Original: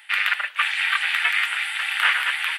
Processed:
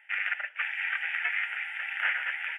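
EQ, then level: Savitzky-Golay filter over 25 samples; bass shelf 350 Hz +5.5 dB; static phaser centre 1.1 kHz, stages 6; -7.0 dB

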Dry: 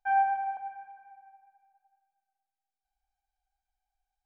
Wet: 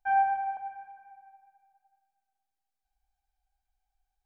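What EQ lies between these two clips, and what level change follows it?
bass shelf 200 Hz +7 dB; 0.0 dB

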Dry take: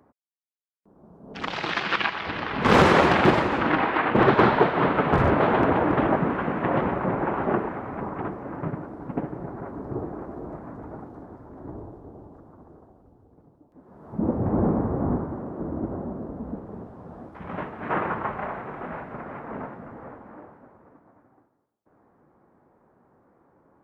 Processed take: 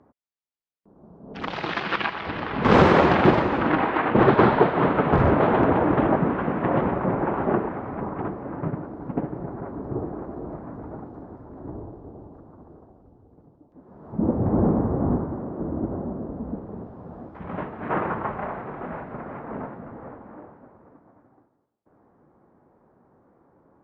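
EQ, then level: distance through air 130 m; peaking EQ 2.2 kHz -3.5 dB 2.3 oct; +2.5 dB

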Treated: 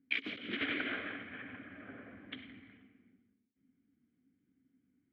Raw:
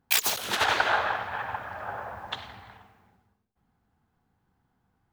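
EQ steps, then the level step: vowel filter i; distance through air 480 m; treble shelf 5.6 kHz -9 dB; +11.5 dB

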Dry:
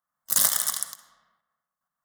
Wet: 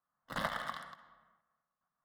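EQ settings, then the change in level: distance through air 450 m; treble shelf 5.9 kHz -11.5 dB; +2.0 dB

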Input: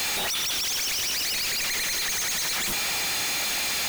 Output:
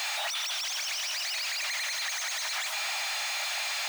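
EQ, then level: brick-wall FIR high-pass 570 Hz; treble shelf 5.8 kHz -7 dB; peaking EQ 13 kHz -6 dB 0.73 oct; -2.0 dB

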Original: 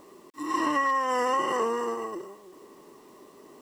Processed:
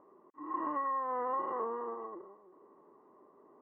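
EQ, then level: low-pass 1.3 kHz 24 dB/octave; bass shelf 61 Hz -9.5 dB; bass shelf 420 Hz -8 dB; -6.0 dB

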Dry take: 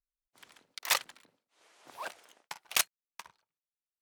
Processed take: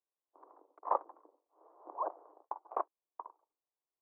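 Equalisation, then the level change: Chebyshev band-pass 310–1100 Hz, order 4; +7.0 dB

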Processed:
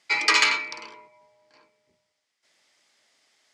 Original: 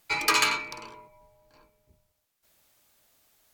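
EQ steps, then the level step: cabinet simulation 240–8200 Hz, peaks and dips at 2 kHz +10 dB, 3.2 kHz +4 dB, 5 kHz +7 dB; 0.0 dB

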